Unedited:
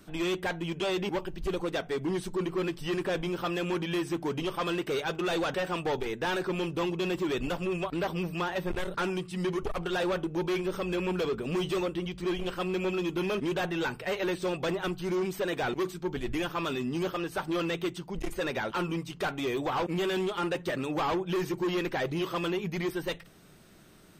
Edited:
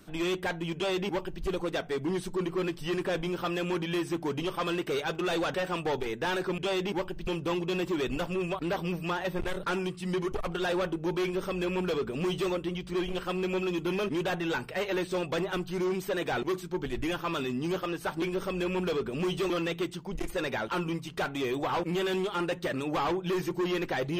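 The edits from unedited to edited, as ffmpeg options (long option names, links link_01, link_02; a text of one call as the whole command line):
ffmpeg -i in.wav -filter_complex "[0:a]asplit=5[link_01][link_02][link_03][link_04][link_05];[link_01]atrim=end=6.582[link_06];[link_02]atrim=start=0.748:end=1.442[link_07];[link_03]atrim=start=6.578:end=17.532[link_08];[link_04]atrim=start=10.538:end=11.822[link_09];[link_05]atrim=start=17.528[link_10];[link_06][link_07]acrossfade=duration=0.004:curve1=hsin:curve2=hsin[link_11];[link_11][link_08]acrossfade=duration=0.004:curve1=hsin:curve2=hsin[link_12];[link_12][link_09]acrossfade=duration=0.004:curve1=hsin:curve2=hsin[link_13];[link_13][link_10]acrossfade=duration=0.004:curve1=hsin:curve2=hsin" out.wav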